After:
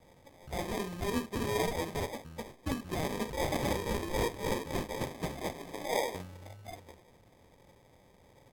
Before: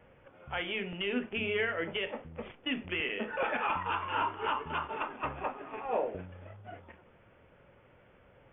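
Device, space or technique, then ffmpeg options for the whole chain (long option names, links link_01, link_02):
crushed at another speed: -af "asetrate=55125,aresample=44100,acrusher=samples=25:mix=1:aa=0.000001,asetrate=35280,aresample=44100"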